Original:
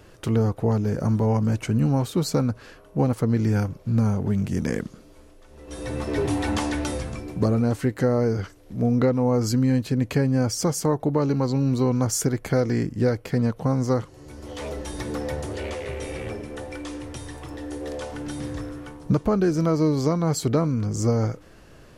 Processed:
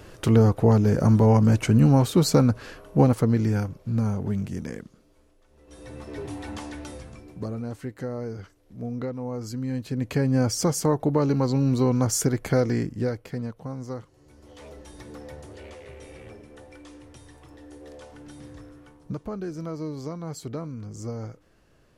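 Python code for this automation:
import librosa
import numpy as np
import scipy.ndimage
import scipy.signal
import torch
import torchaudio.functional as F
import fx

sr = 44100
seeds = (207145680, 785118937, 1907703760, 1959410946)

y = fx.gain(x, sr, db=fx.line((3.0, 4.0), (3.65, -3.5), (4.36, -3.5), (4.82, -11.0), (9.53, -11.0), (10.35, 0.0), (12.63, 0.0), (13.63, -12.0)))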